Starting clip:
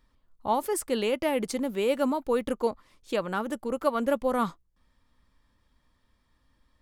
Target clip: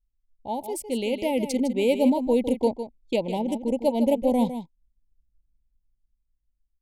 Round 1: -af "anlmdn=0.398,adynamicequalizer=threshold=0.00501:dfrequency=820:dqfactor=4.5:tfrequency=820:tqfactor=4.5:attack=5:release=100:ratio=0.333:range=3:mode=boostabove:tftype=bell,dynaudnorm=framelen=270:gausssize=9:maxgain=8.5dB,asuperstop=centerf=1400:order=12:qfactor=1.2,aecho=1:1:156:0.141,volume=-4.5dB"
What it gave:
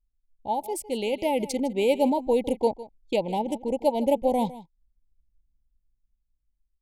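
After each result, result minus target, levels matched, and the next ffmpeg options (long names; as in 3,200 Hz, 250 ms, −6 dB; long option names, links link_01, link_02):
1,000 Hz band +5.0 dB; echo-to-direct −6.5 dB
-af "anlmdn=0.398,adynamicequalizer=threshold=0.00501:dfrequency=240:dqfactor=4.5:tfrequency=240:tqfactor=4.5:attack=5:release=100:ratio=0.333:range=3:mode=boostabove:tftype=bell,dynaudnorm=framelen=270:gausssize=9:maxgain=8.5dB,asuperstop=centerf=1400:order=12:qfactor=1.2,aecho=1:1:156:0.141,volume=-4.5dB"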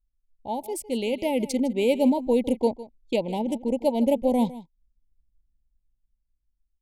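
echo-to-direct −6.5 dB
-af "anlmdn=0.398,adynamicequalizer=threshold=0.00501:dfrequency=240:dqfactor=4.5:tfrequency=240:tqfactor=4.5:attack=5:release=100:ratio=0.333:range=3:mode=boostabove:tftype=bell,dynaudnorm=framelen=270:gausssize=9:maxgain=8.5dB,asuperstop=centerf=1400:order=12:qfactor=1.2,aecho=1:1:156:0.299,volume=-4.5dB"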